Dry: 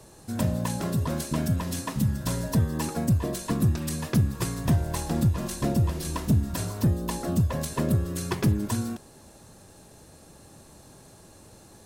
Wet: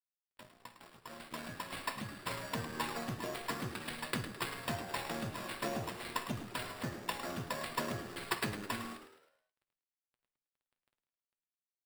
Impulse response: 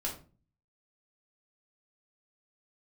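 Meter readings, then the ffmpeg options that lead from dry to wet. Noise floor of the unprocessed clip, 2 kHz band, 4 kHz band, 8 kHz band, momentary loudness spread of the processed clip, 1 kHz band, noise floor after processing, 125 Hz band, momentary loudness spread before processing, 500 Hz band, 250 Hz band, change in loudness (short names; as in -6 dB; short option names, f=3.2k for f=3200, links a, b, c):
-52 dBFS, -0.5 dB, -3.5 dB, -12.5 dB, 13 LU, -4.0 dB, under -85 dBFS, -21.5 dB, 5 LU, -9.5 dB, -16.5 dB, -12.5 dB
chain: -filter_complex "[0:a]lowpass=2.2k,aderivative,dynaudnorm=f=900:g=3:m=14dB,acrusher=samples=7:mix=1:aa=0.000001,aeval=exprs='sgn(val(0))*max(abs(val(0))-0.00316,0)':c=same,flanger=delay=7.9:depth=1.1:regen=62:speed=0.28:shape=sinusoidal,asplit=6[a][b][c][d][e][f];[b]adelay=106,afreqshift=79,volume=-11dB[g];[c]adelay=212,afreqshift=158,volume=-17.9dB[h];[d]adelay=318,afreqshift=237,volume=-24.9dB[i];[e]adelay=424,afreqshift=316,volume=-31.8dB[j];[f]adelay=530,afreqshift=395,volume=-38.7dB[k];[a][g][h][i][j][k]amix=inputs=6:normalize=0,asplit=2[l][m];[1:a]atrim=start_sample=2205,asetrate=79380,aresample=44100,adelay=49[n];[m][n]afir=irnorm=-1:irlink=0,volume=-12dB[o];[l][o]amix=inputs=2:normalize=0,volume=5.5dB"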